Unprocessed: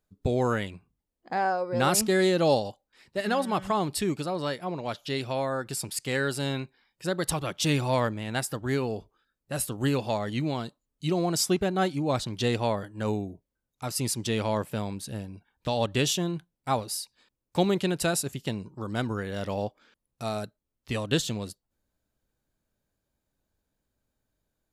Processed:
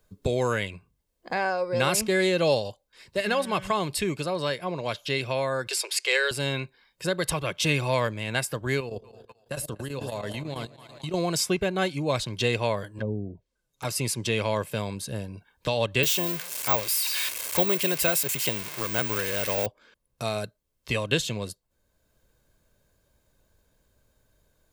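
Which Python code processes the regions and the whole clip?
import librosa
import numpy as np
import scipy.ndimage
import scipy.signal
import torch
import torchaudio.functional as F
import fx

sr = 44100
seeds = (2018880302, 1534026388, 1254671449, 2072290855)

y = fx.chain(x, sr, fx.cheby1_highpass(hz=360.0, order=6),
    fx.peak_eq(hz=4400.0, db=9.0, octaves=2.1), at=(5.67, 6.31))
y = fx.chain(y, sr, fx.echo_split(split_hz=680.0, low_ms=99, high_ms=239, feedback_pct=52, wet_db=-12.0),
    fx.level_steps(step_db=18),
    fx.chopper(hz=9.1, depth_pct=65, duty_pct=85), at=(8.8, 11.14))
y = fx.chain(y, sr, fx.env_lowpass_down(base_hz=330.0, full_db=-26.0),
    fx.env_flanger(rest_ms=8.3, full_db=-29.5), at=(12.98, 13.85))
y = fx.chain(y, sr, fx.crossing_spikes(level_db=-18.5),
    fx.bass_treble(bass_db=-6, treble_db=-3),
    fx.resample_bad(factor=2, down='filtered', up='zero_stuff'), at=(16.03, 19.66))
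y = fx.dynamic_eq(y, sr, hz=2400.0, q=2.2, threshold_db=-49.0, ratio=4.0, max_db=7)
y = y + 0.37 * np.pad(y, (int(1.9 * sr / 1000.0), 0))[:len(y)]
y = fx.band_squash(y, sr, depth_pct=40)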